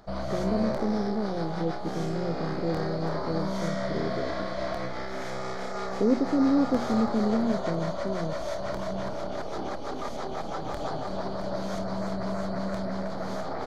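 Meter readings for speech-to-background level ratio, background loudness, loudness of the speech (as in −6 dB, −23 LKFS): 3.5 dB, −33.0 LKFS, −29.5 LKFS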